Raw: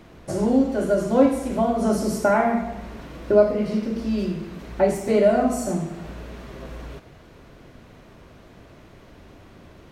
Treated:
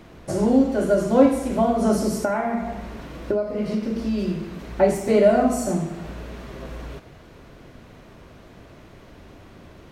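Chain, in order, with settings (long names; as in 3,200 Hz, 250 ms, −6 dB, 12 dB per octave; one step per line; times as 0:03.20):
0:02.08–0:04.28: downward compressor 12 to 1, threshold −21 dBFS, peak gain reduction 12 dB
level +1.5 dB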